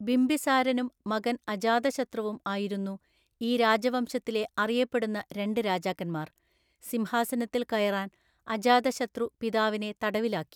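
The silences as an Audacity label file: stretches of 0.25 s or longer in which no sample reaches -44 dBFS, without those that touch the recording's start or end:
2.960000	3.410000	silence
6.270000	6.830000	silence
8.080000	8.470000	silence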